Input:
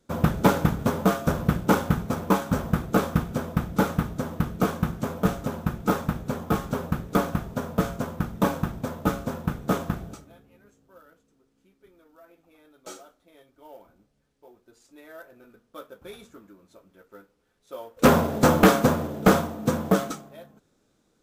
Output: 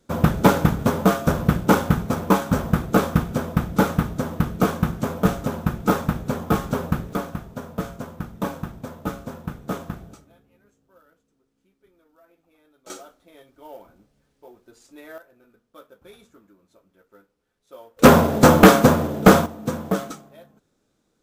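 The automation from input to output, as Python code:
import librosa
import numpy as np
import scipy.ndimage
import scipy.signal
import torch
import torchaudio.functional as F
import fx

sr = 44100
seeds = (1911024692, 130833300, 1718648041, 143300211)

y = fx.gain(x, sr, db=fx.steps((0.0, 4.0), (7.13, -4.0), (12.9, 5.5), (15.18, -5.0), (17.99, 6.0), (19.46, -2.0)))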